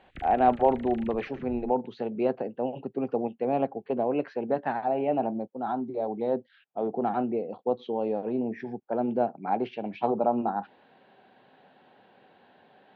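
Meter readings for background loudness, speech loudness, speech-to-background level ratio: −47.0 LKFS, −29.0 LKFS, 18.0 dB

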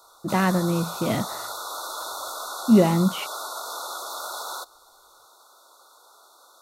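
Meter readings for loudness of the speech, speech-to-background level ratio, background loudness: −22.5 LKFS, 10.5 dB, −33.0 LKFS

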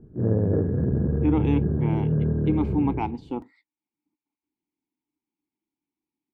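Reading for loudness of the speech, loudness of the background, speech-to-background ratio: −28.0 LKFS, −25.0 LKFS, −3.0 dB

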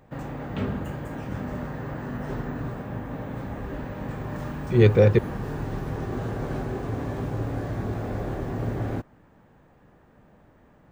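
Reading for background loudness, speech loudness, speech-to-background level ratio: −32.0 LKFS, −19.5 LKFS, 12.5 dB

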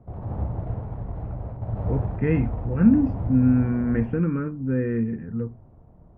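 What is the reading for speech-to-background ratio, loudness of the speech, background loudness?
8.0 dB, −23.5 LKFS, −31.5 LKFS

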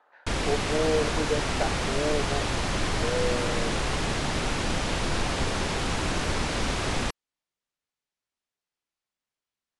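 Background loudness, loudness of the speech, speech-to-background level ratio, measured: −28.0 LKFS, −31.5 LKFS, −3.5 dB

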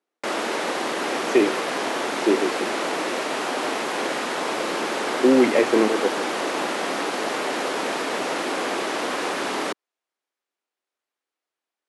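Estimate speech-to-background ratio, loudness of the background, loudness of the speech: 4.0 dB, −25.5 LKFS, −21.5 LKFS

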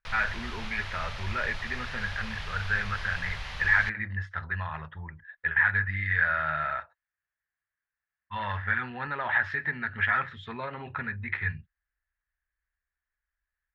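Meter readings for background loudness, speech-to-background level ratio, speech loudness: −39.0 LKFS, 9.5 dB, −29.5 LKFS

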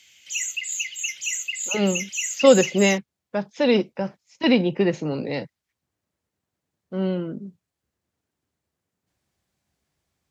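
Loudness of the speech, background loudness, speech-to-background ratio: −22.5 LKFS, −27.0 LKFS, 4.5 dB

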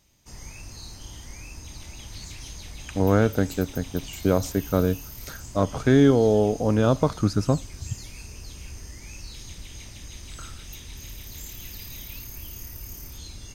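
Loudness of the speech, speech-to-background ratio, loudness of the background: −23.0 LKFS, 17.0 dB, −40.0 LKFS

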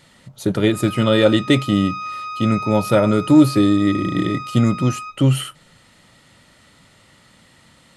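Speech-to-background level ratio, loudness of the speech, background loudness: 12.5 dB, −17.5 LKFS, −30.0 LKFS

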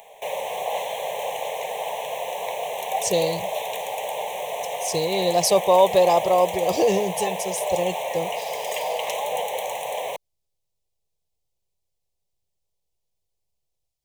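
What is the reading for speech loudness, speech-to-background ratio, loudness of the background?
−22.0 LKFS, 6.5 dB, −28.5 LKFS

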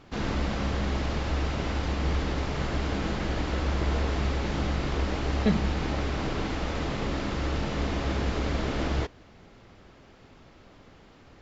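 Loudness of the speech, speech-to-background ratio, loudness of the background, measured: −30.0 LKFS, 0.0 dB, −30.0 LKFS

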